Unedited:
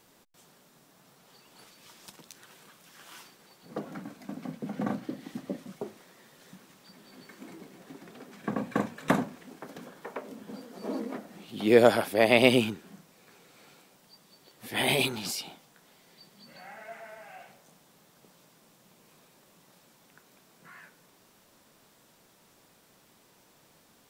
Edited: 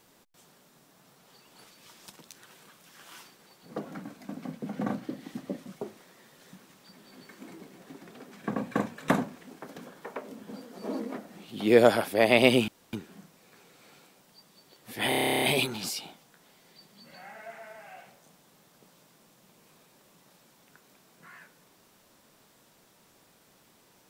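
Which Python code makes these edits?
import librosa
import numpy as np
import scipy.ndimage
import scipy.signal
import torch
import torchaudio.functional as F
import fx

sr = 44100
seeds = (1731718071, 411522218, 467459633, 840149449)

y = fx.edit(x, sr, fx.insert_room_tone(at_s=12.68, length_s=0.25),
    fx.stutter(start_s=14.84, slice_s=0.03, count=12), tone=tone)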